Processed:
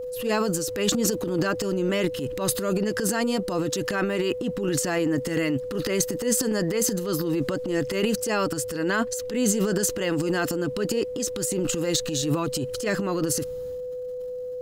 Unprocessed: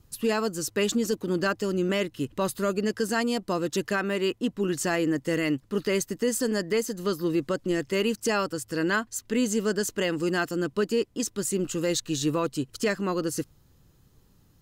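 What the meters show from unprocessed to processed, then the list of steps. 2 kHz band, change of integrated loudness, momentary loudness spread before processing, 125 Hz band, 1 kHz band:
0.0 dB, +2.0 dB, 3 LU, +3.5 dB, +0.5 dB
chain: transient designer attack −8 dB, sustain +11 dB
steady tone 500 Hz −31 dBFS
level +1 dB

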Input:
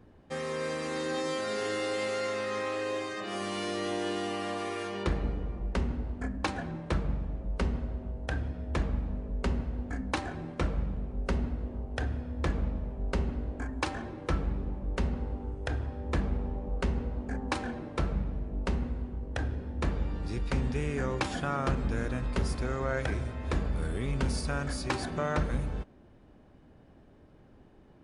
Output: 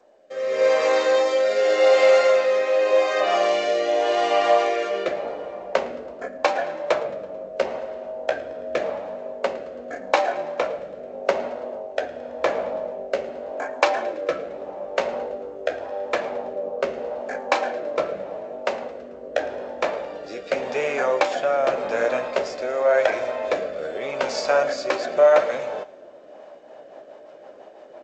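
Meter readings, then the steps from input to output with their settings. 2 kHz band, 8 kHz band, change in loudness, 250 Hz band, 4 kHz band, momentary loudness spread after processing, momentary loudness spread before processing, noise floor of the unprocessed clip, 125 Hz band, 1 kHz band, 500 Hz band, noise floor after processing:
+10.0 dB, +5.0 dB, +10.5 dB, −2.5 dB, +8.5 dB, 14 LU, 5 LU, −57 dBFS, below −15 dB, +12.5 dB, +16.5 dB, −44 dBFS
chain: in parallel at −0.5 dB: downward compressor 8 to 1, threshold −44 dBFS, peak gain reduction 19.5 dB
on the sum: rotating-speaker cabinet horn 0.85 Hz, later 6 Hz, at 0:26.12
high-pass with resonance 600 Hz, resonance Q 4.9
flanger 0.43 Hz, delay 7.7 ms, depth 9.6 ms, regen −43%
on a send: repeating echo 110 ms, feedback 55%, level −20 dB
on the sum: automatic gain control gain up to 11 dB
dynamic equaliser 2,300 Hz, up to +4 dB, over −48 dBFS, Q 4.4
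level +2 dB
G.722 64 kbit/s 16,000 Hz

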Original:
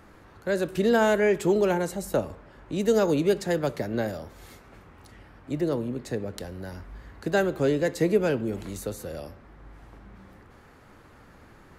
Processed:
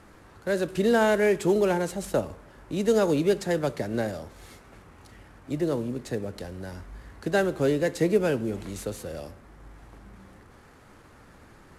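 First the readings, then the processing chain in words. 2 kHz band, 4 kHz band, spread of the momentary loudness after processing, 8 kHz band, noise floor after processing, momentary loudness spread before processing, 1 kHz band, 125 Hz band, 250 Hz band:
0.0 dB, 0.0 dB, 17 LU, +0.5 dB, −53 dBFS, 17 LU, 0.0 dB, 0.0 dB, 0.0 dB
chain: variable-slope delta modulation 64 kbit/s

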